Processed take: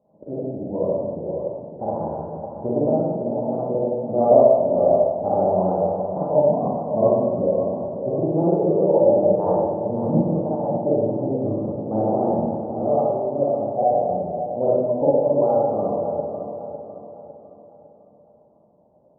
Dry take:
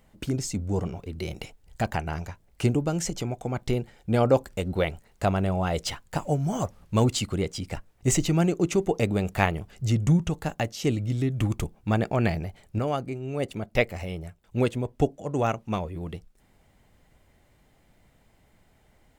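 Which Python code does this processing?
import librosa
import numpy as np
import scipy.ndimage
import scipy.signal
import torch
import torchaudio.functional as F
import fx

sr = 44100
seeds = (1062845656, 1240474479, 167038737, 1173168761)

p1 = scipy.signal.sosfilt(scipy.signal.butter(6, 740.0, 'lowpass', fs=sr, output='sos'), x)
p2 = fx.rev_schroeder(p1, sr, rt60_s=1.4, comb_ms=38, drr_db=-8.5)
p3 = fx.formant_shift(p2, sr, semitones=3)
p4 = scipy.signal.sosfilt(scipy.signal.butter(2, 150.0, 'highpass', fs=sr, output='sos'), p3)
p5 = fx.peak_eq(p4, sr, hz=580.0, db=13.5, octaves=0.44)
p6 = p5 + fx.echo_feedback(p5, sr, ms=554, feedback_pct=42, wet_db=-9, dry=0)
y = p6 * librosa.db_to_amplitude(-6.5)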